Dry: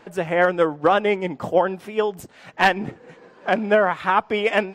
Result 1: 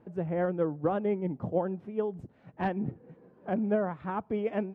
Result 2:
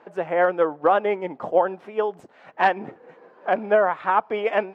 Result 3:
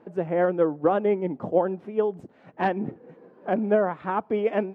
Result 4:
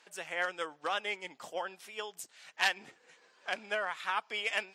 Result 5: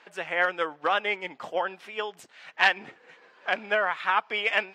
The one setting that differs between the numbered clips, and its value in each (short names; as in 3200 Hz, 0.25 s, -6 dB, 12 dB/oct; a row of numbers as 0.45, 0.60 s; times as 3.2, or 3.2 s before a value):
band-pass, frequency: 110, 730, 270, 7300, 2700 Hz